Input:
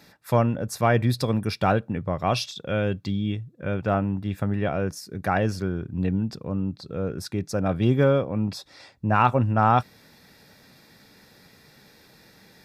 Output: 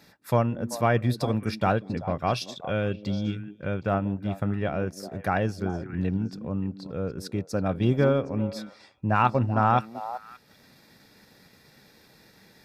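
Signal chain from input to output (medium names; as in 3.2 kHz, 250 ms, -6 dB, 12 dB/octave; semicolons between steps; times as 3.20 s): repeats whose band climbs or falls 192 ms, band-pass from 280 Hz, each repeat 1.4 oct, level -7 dB; transient shaper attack +1 dB, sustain -5 dB; trim -2.5 dB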